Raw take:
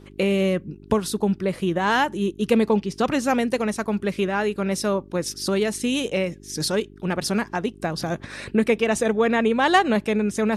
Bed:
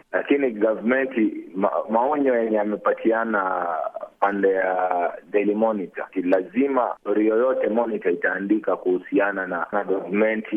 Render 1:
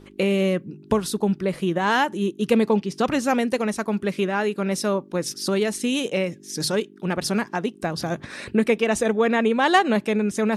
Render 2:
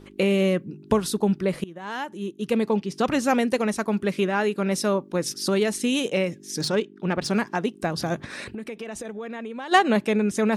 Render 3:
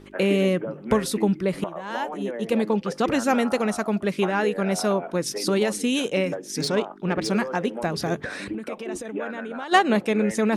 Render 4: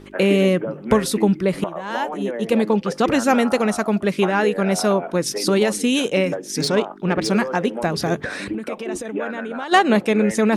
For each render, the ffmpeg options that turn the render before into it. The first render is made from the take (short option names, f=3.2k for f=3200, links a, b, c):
-af "bandreject=f=50:t=h:w=4,bandreject=f=100:t=h:w=4,bandreject=f=150:t=h:w=4"
-filter_complex "[0:a]asettb=1/sr,asplit=3[a][b][c];[a]atrim=end=6.614[d];[b]atrim=start=6.61:end=7.3,asetpts=PTS-STARTPTS,afade=t=in:d=0.004:c=qsin,afade=t=out:st=0.686:d=0.004:c=qsin,adynamicsmooth=sensitivity=1.5:basefreq=5.4k[e];[c]atrim=start=7.296[f];[d][e]acrossfade=d=0.004:c1=hsin:c2=qsin[g];[g][f]acrossfade=d=0.004:c1=qsin:c2=hsin,asplit=3[h][i][j];[h]afade=t=out:st=8.43:d=0.02[k];[i]acompressor=threshold=-32dB:ratio=6:attack=3.2:release=140:knee=1:detection=peak,afade=t=in:st=8.43:d=0.02,afade=t=out:st=9.71:d=0.02[l];[j]afade=t=in:st=9.71:d=0.02[m];[k][l][m]amix=inputs=3:normalize=0,asplit=2[n][o];[n]atrim=end=1.64,asetpts=PTS-STARTPTS,afade=t=out:st=1.636:d=0.004:c=hsin:silence=0.0891251[p];[o]atrim=start=1.64,asetpts=PTS-STARTPTS,afade=t=in:d=1.62:silence=0.0891251[q];[p][q]concat=n=2:v=0:a=1"
-filter_complex "[1:a]volume=-12.5dB[a];[0:a][a]amix=inputs=2:normalize=0"
-af "volume=4.5dB,alimiter=limit=-3dB:level=0:latency=1"